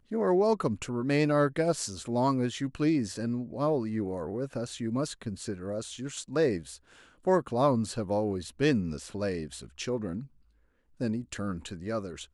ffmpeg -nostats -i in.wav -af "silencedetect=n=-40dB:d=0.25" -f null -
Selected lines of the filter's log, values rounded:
silence_start: 6.76
silence_end: 7.25 | silence_duration: 0.49
silence_start: 10.25
silence_end: 11.00 | silence_duration: 0.75